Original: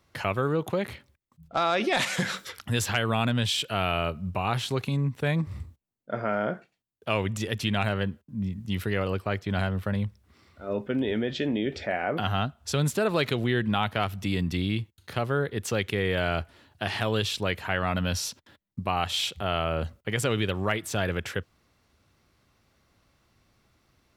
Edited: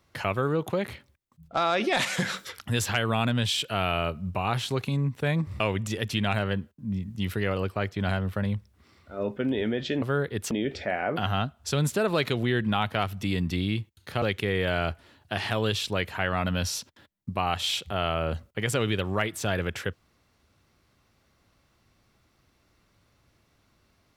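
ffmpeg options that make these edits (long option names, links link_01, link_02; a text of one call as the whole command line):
ffmpeg -i in.wav -filter_complex "[0:a]asplit=5[link_01][link_02][link_03][link_04][link_05];[link_01]atrim=end=5.602[link_06];[link_02]atrim=start=7.098:end=11.522[link_07];[link_03]atrim=start=15.228:end=15.722[link_08];[link_04]atrim=start=11.518:end=15.232[link_09];[link_05]atrim=start=15.718[link_10];[link_06][link_07]acrossfade=duration=0.004:curve1=hsin:curve2=hsin[link_11];[link_11][link_08]acrossfade=duration=0.004:curve1=hsin:curve2=hsin[link_12];[link_12][link_09]acrossfade=duration=0.004:curve1=hsin:curve2=hsin[link_13];[link_13][link_10]acrossfade=duration=0.004:curve1=hsin:curve2=hsin" out.wav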